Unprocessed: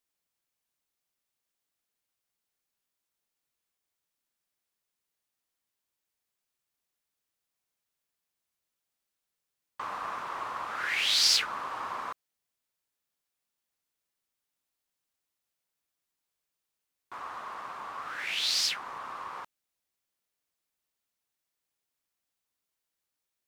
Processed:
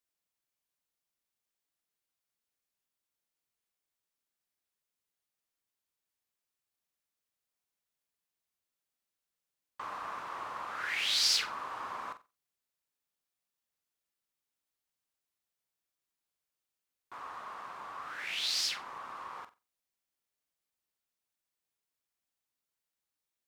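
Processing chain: flutter echo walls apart 7.8 m, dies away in 0.25 s; gain -4.5 dB

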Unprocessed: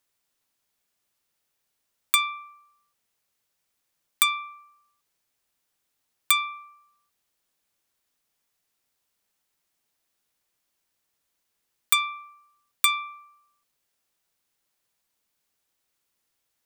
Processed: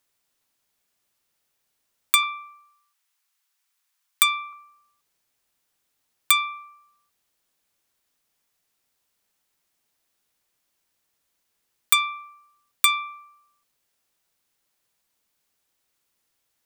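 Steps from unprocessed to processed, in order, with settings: 2.23–4.53 HPF 890 Hz 24 dB/oct; gain +2.5 dB

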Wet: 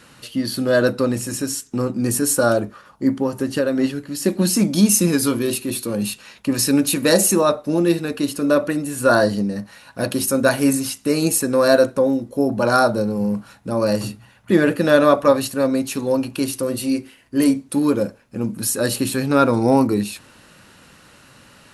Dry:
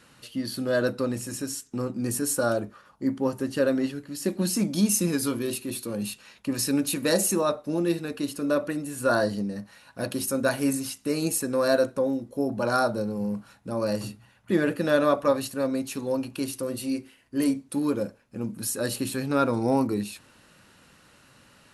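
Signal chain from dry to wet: 3.18–3.79 compressor, threshold -24 dBFS, peak gain reduction 6.5 dB; gain +8 dB

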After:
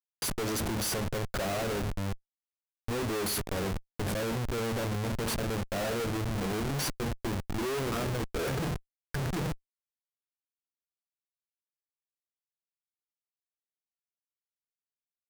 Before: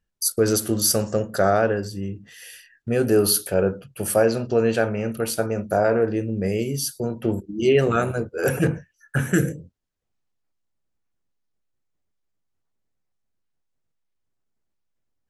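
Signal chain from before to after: 3.44–5.24 tilt -2 dB/oct; Schmitt trigger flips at -28 dBFS; gain -7.5 dB

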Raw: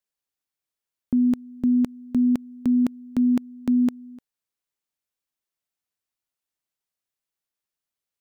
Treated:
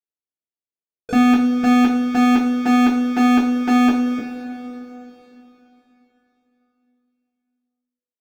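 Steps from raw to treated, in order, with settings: inverse Chebyshev low-pass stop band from 1200 Hz, stop band 40 dB; low shelf 130 Hz -6.5 dB; sample leveller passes 5; harmoniser +12 st -11 dB; two-slope reverb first 0.31 s, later 3.6 s, from -18 dB, DRR -5.5 dB

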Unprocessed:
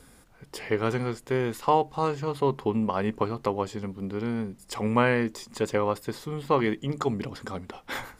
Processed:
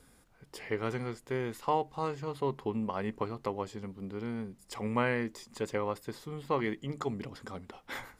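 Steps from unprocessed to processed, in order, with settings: dynamic EQ 2000 Hz, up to +4 dB, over -51 dBFS, Q 6.7; gain -7.5 dB

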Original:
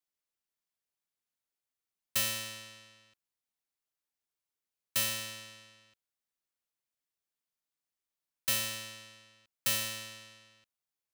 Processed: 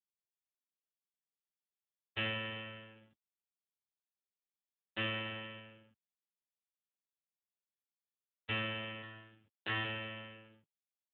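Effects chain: high shelf 2900 Hz -9 dB; in parallel at +2 dB: compressor 6:1, threshold -48 dBFS, peak gain reduction 14.5 dB; on the sum: backlash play -52 dBFS; 9–9.84 doubler 21 ms -3 dB; gain +3 dB; AMR-NB 4.75 kbps 8000 Hz

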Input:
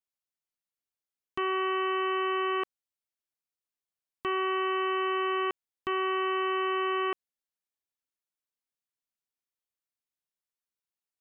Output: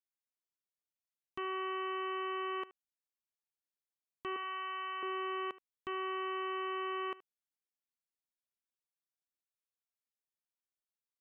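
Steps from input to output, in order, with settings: 4.36–5.03 HPF 810 Hz 12 dB/oct; echo 75 ms -19 dB; gain -9 dB

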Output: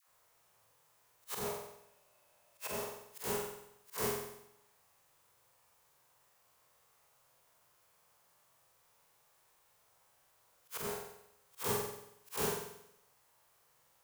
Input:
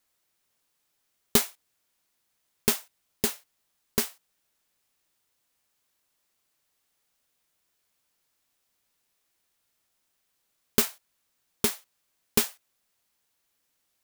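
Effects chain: time blur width 92 ms; compressor 5:1, threshold -36 dBFS, peak gain reduction 11.5 dB; dispersion lows, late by 86 ms, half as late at 710 Hz; 1.44–2.75 small resonant body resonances 610/2600 Hz, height 10 dB -> 14 dB, ringing for 40 ms; auto swell 0.156 s; graphic EQ 125/250/500/1000/4000 Hz +10/-8/+7/+9/-3 dB; flutter echo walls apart 7.9 m, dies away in 0.77 s; gain +3.5 dB

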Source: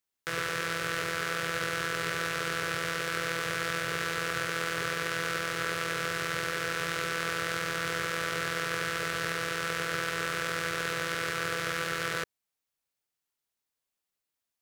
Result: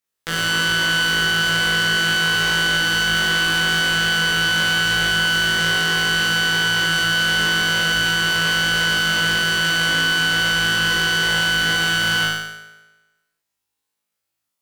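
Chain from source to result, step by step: flutter echo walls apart 3.2 m, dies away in 1.2 s; added harmonics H 6 -10 dB, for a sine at -9 dBFS

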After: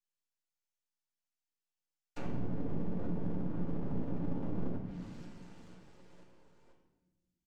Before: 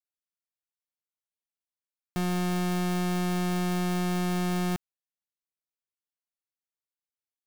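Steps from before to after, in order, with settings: frequency-shifting echo 0.489 s, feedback 59%, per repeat +52 Hz, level -22 dB; in parallel at -0.5 dB: compressor, threshold -44 dBFS, peak gain reduction 14.5 dB; on the sum: overloaded stage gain 26.5 dB; noise vocoder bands 8; flange 0.3 Hz, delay 4.3 ms, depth 8.2 ms, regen -85%; treble ducked by the level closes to 440 Hz, closed at -28.5 dBFS; resonator 180 Hz, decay 0.52 s, harmonics odd, mix 80%; half-wave rectifier; on a send at -1 dB: reverb RT60 1.2 s, pre-delay 3 ms; on the sum: gain +8 dB

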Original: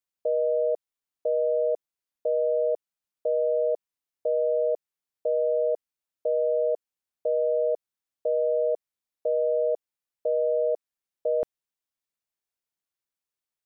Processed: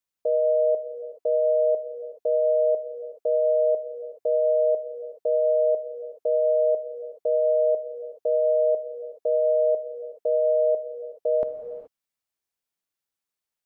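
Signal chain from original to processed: non-linear reverb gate 0.45 s flat, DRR 7 dB; gain +1.5 dB

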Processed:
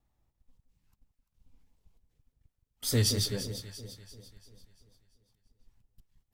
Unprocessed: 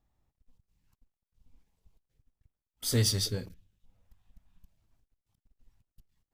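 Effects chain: vibrato 4.2 Hz 59 cents; echo with dull and thin repeats by turns 0.171 s, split 840 Hz, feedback 67%, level -8 dB

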